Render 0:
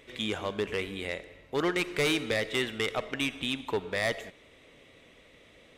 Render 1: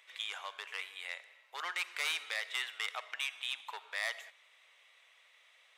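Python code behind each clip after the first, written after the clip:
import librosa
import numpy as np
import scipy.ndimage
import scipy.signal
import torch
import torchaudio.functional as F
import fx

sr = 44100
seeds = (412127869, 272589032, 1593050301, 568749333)

y = scipy.signal.sosfilt(scipy.signal.butter(4, 860.0, 'highpass', fs=sr, output='sos'), x)
y = y * librosa.db_to_amplitude(-4.5)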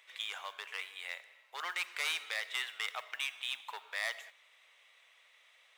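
y = fx.mod_noise(x, sr, seeds[0], snr_db=26)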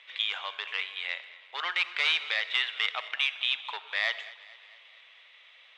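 y = fx.lowpass_res(x, sr, hz=3400.0, q=1.9)
y = fx.echo_feedback(y, sr, ms=223, feedback_pct=56, wet_db=-19.0)
y = y * librosa.db_to_amplitude(5.0)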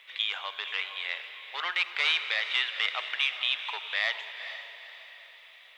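y = fx.quant_dither(x, sr, seeds[1], bits=12, dither='none')
y = fx.echo_diffused(y, sr, ms=456, feedback_pct=44, wet_db=-10.5)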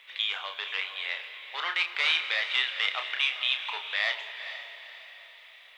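y = fx.doubler(x, sr, ms=31.0, db=-7)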